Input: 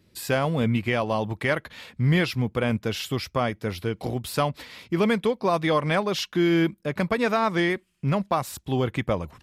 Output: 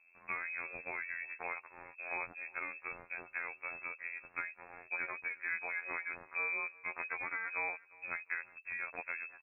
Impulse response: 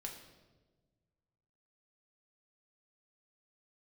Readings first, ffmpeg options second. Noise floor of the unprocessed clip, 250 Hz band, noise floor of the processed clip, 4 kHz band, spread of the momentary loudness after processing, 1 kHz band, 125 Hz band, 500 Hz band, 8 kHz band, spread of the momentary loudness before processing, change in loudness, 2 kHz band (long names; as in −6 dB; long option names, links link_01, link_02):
−63 dBFS, −35.5 dB, −64 dBFS, below −40 dB, 6 LU, −17.0 dB, below −40 dB, −27.0 dB, below −40 dB, 7 LU, −14.5 dB, −6.5 dB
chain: -filter_complex "[0:a]equalizer=frequency=210:width_type=o:width=0.77:gain=-5.5,acrossover=split=400|840[link_01][link_02][link_03];[link_01]acompressor=threshold=-42dB:ratio=4[link_04];[link_02]acompressor=threshold=-46dB:ratio=4[link_05];[link_03]acompressor=threshold=-37dB:ratio=4[link_06];[link_04][link_05][link_06]amix=inputs=3:normalize=0,afftfilt=real='hypot(re,im)*cos(PI*b)':imag='0':win_size=2048:overlap=0.75,adynamicsmooth=sensitivity=4:basefreq=2100,asplit=2[link_07][link_08];[link_08]aecho=0:1:353|706:0.075|0.0255[link_09];[link_07][link_09]amix=inputs=2:normalize=0,lowpass=frequency=2300:width_type=q:width=0.5098,lowpass=frequency=2300:width_type=q:width=0.6013,lowpass=frequency=2300:width_type=q:width=0.9,lowpass=frequency=2300:width_type=q:width=2.563,afreqshift=-2700"